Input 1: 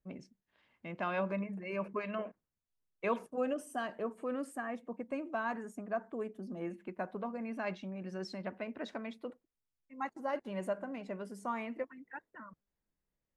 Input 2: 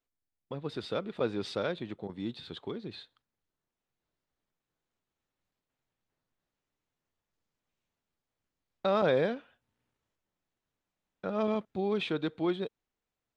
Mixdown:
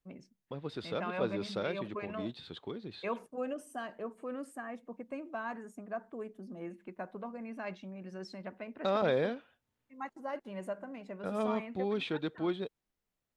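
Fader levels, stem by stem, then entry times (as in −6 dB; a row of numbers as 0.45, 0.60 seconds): −3.0, −3.0 decibels; 0.00, 0.00 seconds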